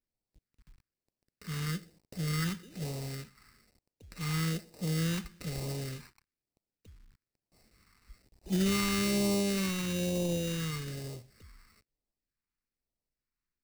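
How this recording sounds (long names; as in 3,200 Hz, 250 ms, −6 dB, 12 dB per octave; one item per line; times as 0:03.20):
aliases and images of a low sample rate 3,300 Hz, jitter 0%
phaser sweep stages 2, 1.1 Hz, lowest notch 580–1,400 Hz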